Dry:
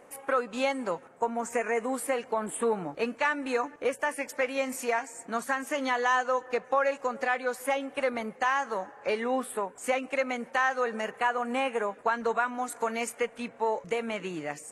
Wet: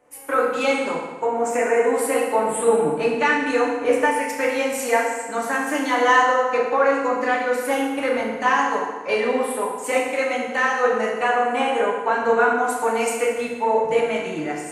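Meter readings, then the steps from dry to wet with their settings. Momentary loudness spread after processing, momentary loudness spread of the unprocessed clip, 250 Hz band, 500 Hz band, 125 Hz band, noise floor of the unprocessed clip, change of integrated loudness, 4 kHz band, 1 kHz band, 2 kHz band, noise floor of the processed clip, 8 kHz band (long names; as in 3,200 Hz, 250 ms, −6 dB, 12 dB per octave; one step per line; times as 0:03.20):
5 LU, 6 LU, +9.0 dB, +10.0 dB, can't be measured, −52 dBFS, +9.0 dB, +8.0 dB, +9.0 dB, +8.5 dB, −32 dBFS, +8.5 dB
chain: feedback delay network reverb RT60 1.6 s, low-frequency decay 1.05×, high-frequency decay 0.8×, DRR −4 dB
multiband upward and downward expander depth 40%
level +3 dB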